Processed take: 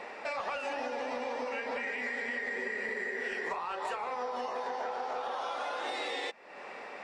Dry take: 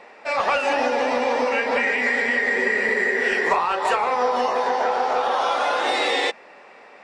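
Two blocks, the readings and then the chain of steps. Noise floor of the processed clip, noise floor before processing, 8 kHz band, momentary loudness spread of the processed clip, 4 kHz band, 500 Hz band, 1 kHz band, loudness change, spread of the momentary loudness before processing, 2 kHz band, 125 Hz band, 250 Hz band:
-46 dBFS, -47 dBFS, -14.5 dB, 3 LU, -14.5 dB, -14.5 dB, -14.5 dB, -14.5 dB, 2 LU, -14.5 dB, n/a, -14.5 dB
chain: compressor 4:1, threshold -39 dBFS, peak gain reduction 19.5 dB; gain +2 dB

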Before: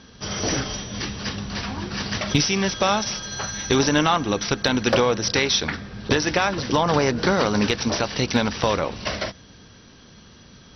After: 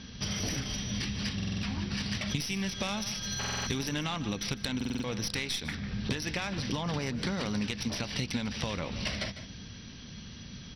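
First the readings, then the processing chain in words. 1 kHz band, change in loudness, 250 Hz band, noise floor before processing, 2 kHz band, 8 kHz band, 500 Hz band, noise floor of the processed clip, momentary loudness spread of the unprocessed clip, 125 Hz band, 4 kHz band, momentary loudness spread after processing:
-16.5 dB, -10.5 dB, -9.0 dB, -48 dBFS, -11.0 dB, n/a, -17.0 dB, -46 dBFS, 10 LU, -6.5 dB, -9.0 dB, 10 LU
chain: tracing distortion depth 0.047 ms; band shelf 700 Hz -9 dB 2.6 oct; echo 0.15 s -18 dB; compressor 6:1, threshold -34 dBFS, peak gain reduction 17 dB; high shelf 5200 Hz -5 dB; stuck buffer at 1.35/3.39/4.76, samples 2048, times 5; gain +4 dB

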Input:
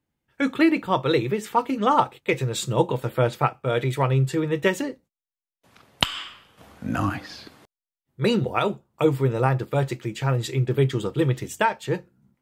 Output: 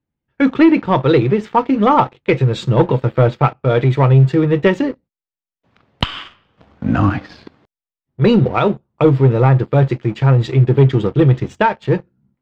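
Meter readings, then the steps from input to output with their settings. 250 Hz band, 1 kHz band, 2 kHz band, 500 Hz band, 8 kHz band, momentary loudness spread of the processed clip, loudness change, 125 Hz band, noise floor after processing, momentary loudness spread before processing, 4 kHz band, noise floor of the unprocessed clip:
+10.0 dB, +6.5 dB, +4.5 dB, +8.0 dB, n/a, 8 LU, +9.0 dB, +11.5 dB, under -85 dBFS, 9 LU, +1.5 dB, under -85 dBFS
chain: low shelf 390 Hz +5.5 dB; sample leveller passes 2; air absorption 190 m

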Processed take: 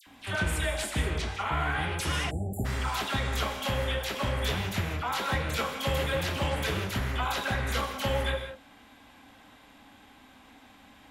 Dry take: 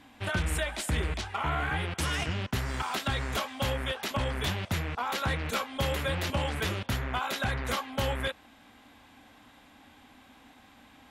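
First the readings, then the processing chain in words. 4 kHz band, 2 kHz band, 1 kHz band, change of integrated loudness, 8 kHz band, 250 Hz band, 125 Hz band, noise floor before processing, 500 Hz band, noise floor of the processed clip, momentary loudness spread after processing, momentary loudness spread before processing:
+1.0 dB, +1.5 dB, +1.0 dB, +1.0 dB, +1.0 dB, +0.5 dB, +1.0 dB, -57 dBFS, +2.0 dB, -56 dBFS, 3 LU, 2 LU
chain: dispersion lows, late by 68 ms, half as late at 1700 Hz; upward compressor, threshold -53 dBFS; non-linear reverb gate 0.22 s flat, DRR 5 dB; spectral delete 2.3–2.65, 850–7100 Hz

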